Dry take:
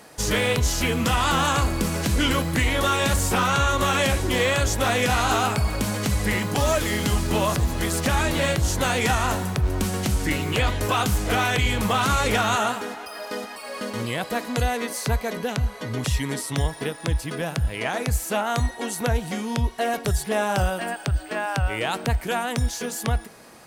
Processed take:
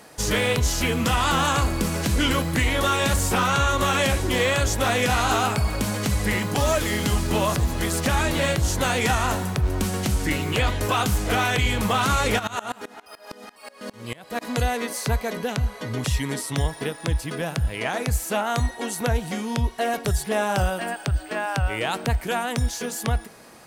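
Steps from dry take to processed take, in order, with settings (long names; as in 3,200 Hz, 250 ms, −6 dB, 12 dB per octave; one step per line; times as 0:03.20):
0:12.38–0:14.41: tremolo with a ramp in dB swelling 8.9 Hz → 3.6 Hz, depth 24 dB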